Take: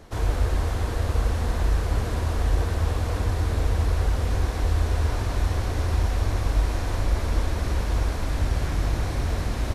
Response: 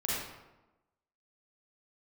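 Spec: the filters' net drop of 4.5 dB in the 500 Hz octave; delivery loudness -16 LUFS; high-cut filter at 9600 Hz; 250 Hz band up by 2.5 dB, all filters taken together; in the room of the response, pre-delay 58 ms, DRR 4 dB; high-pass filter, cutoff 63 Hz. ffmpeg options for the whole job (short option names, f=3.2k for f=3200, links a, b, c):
-filter_complex "[0:a]highpass=63,lowpass=9.6k,equalizer=f=250:t=o:g=5.5,equalizer=f=500:t=o:g=-7.5,asplit=2[a][b];[1:a]atrim=start_sample=2205,adelay=58[c];[b][c]afir=irnorm=-1:irlink=0,volume=-10.5dB[d];[a][d]amix=inputs=2:normalize=0,volume=10.5dB"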